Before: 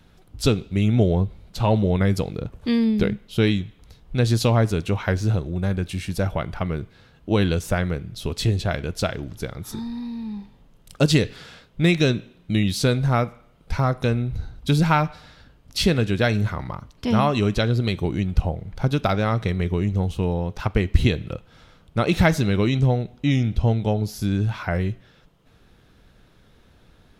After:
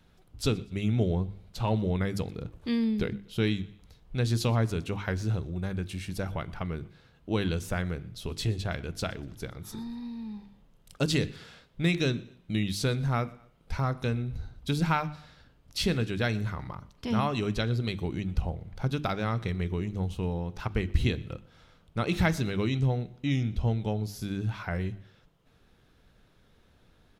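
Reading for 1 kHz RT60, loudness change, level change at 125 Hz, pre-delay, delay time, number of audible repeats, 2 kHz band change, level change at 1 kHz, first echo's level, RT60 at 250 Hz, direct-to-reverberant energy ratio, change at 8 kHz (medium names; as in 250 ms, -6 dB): no reverb, -8.0 dB, -8.0 dB, no reverb, 121 ms, 2, -7.0 dB, -8.0 dB, -24.0 dB, no reverb, no reverb, -7.0 dB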